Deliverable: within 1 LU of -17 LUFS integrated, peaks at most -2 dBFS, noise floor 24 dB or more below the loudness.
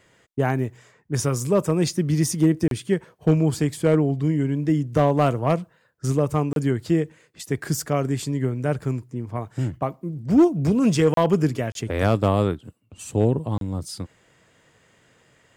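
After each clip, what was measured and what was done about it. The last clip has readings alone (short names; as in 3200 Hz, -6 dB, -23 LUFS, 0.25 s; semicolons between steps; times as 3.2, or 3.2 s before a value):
clipped 0.5%; flat tops at -9.5 dBFS; dropouts 5; longest dropout 32 ms; loudness -23.0 LUFS; peak -9.5 dBFS; loudness target -17.0 LUFS
-> clip repair -9.5 dBFS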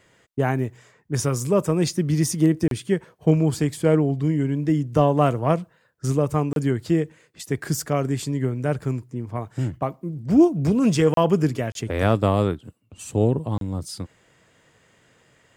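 clipped 0.0%; dropouts 5; longest dropout 32 ms
-> interpolate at 2.68/6.53/11.14/11.72/13.58, 32 ms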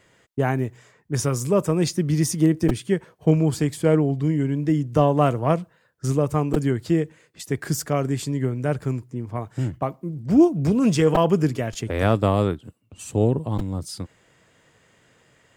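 dropouts 0; loudness -22.5 LUFS; peak -4.5 dBFS; loudness target -17.0 LUFS
-> gain +5.5 dB; limiter -2 dBFS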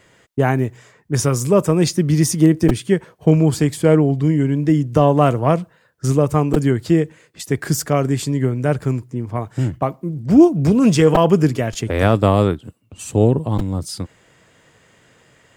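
loudness -17.5 LUFS; peak -2.0 dBFS; noise floor -55 dBFS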